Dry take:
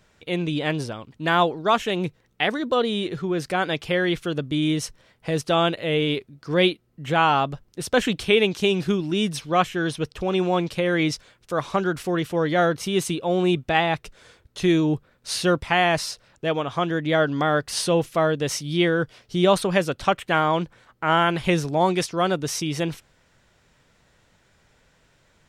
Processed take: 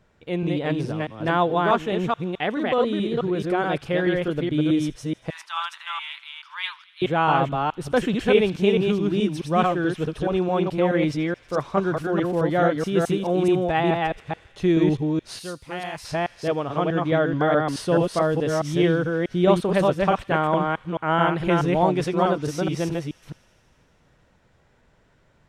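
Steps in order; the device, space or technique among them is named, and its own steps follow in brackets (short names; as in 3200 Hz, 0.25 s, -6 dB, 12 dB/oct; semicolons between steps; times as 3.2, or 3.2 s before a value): reverse delay 0.214 s, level -2 dB; 5.3–7.02 Chebyshev high-pass 910 Hz, order 6; through cloth (high shelf 2200 Hz -12 dB); thin delay 80 ms, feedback 83%, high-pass 2200 Hz, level -21 dB; 15.39–16.05 pre-emphasis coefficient 0.8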